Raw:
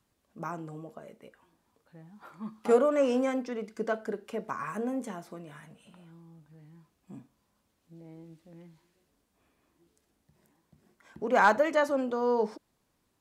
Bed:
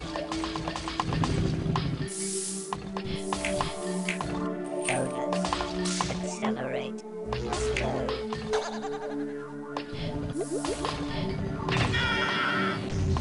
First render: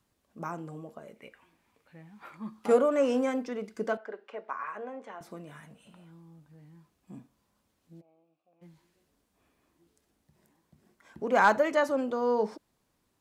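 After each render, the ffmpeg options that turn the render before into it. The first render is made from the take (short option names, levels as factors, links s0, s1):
-filter_complex "[0:a]asettb=1/sr,asplit=3[s0][s1][s2];[s0]atrim=end=1.164[s3];[s1]atrim=start=1.16:end=2.37,asetpts=PTS-STARTPTS,afade=t=in:d=0.004:c=qsin,afade=t=out:st=1.206:d=0.004:c=qsin,equalizer=f=2300:t=o:w=0.74:g=11.5[s4];[s2]atrim=start=2.366[s5];[s3][s4]acrossfade=d=0.004:c1=hsin:c2=qsin[s6];[s6][s5]acrossfade=d=0.004:c1=qsin:c2=hsin,asettb=1/sr,asplit=3[s7][s8][s9];[s7]atrim=end=3.974[s10];[s8]atrim=start=3.97:end=5.21,asetpts=PTS-STARTPTS,afade=t=in:d=0.004:c=qsin,afade=t=out:st=1.236:d=0.004:c=qsin,highpass=570,lowpass=2600[s11];[s9]atrim=start=5.206[s12];[s10][s11]acrossfade=d=0.004:c1=hsin:c2=qsin[s13];[s13][s12]acrossfade=d=0.004:c1=qsin:c2=hsin,asplit=3[s14][s15][s16];[s14]afade=t=out:st=8:d=0.02[s17];[s15]asplit=3[s18][s19][s20];[s18]bandpass=f=730:t=q:w=8,volume=1[s21];[s19]bandpass=f=1090:t=q:w=8,volume=0.501[s22];[s20]bandpass=f=2440:t=q:w=8,volume=0.355[s23];[s21][s22][s23]amix=inputs=3:normalize=0,afade=t=in:st=8:d=0.02,afade=t=out:st=8.61:d=0.02[s24];[s16]afade=t=in:st=8.61:d=0.02[s25];[s17][s24][s25]amix=inputs=3:normalize=0"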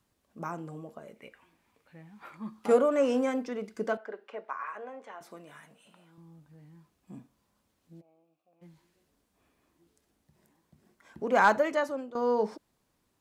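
-filter_complex "[0:a]asettb=1/sr,asplit=3[s0][s1][s2];[s0]atrim=end=4.454[s3];[s1]atrim=start=4.45:end=6.18,asetpts=PTS-STARTPTS,afade=t=in:d=0.004:c=qsin,afade=t=out:st=1.726:d=0.004:c=qsin,highpass=f=450:p=1[s4];[s2]atrim=start=6.176[s5];[s3][s4]acrossfade=d=0.004:c1=hsin:c2=qsin[s6];[s6][s5]acrossfade=d=0.004:c1=qsin:c2=hsin,asplit=2[s7][s8];[s7]atrim=end=12.15,asetpts=PTS-STARTPTS,afade=t=out:st=11.37:d=0.78:c=qsin:silence=0.16788[s9];[s8]atrim=start=12.15,asetpts=PTS-STARTPTS,afade=t=in:d=0.004:c=hsin:silence=0.16788[s10];[s9][s10]concat=n=2:v=0:a=1"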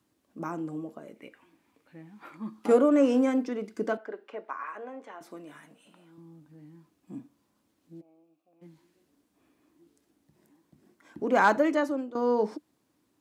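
-af "highpass=87,equalizer=f=300:w=3.2:g=11.5"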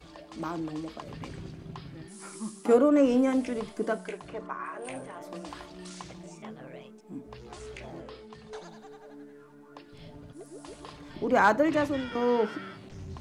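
-filter_complex "[1:a]volume=0.188[s0];[0:a][s0]amix=inputs=2:normalize=0"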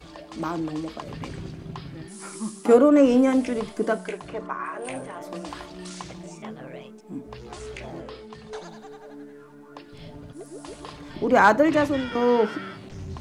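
-af "volume=1.88"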